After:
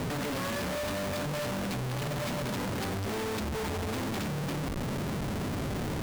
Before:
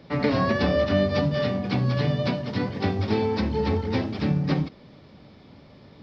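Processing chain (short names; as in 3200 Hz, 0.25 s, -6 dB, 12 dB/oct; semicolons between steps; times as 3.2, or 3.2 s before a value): compressor, threshold -32 dBFS, peak gain reduction 14.5 dB; Schmitt trigger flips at -50.5 dBFS; gain +3 dB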